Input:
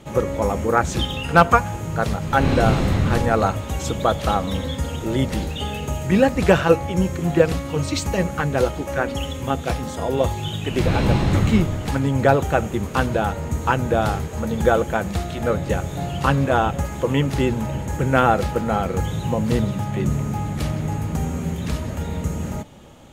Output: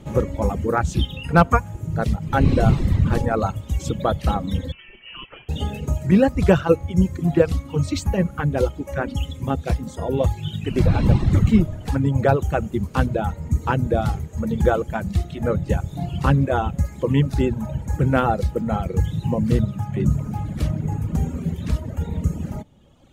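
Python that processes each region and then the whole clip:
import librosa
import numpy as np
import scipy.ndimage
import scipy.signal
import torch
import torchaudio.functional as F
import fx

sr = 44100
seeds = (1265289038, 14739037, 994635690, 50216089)

y = fx.chain(x, sr, fx.highpass(hz=1300.0, slope=6),
    fx.freq_invert(carrier_hz=3200), at=(4.72, 5.49))
y = fx.dereverb_blind(y, sr, rt60_s=1.7)
y = fx.low_shelf(y, sr, hz=350.0, db=10.5)
y = y * librosa.db_to_amplitude(-4.5)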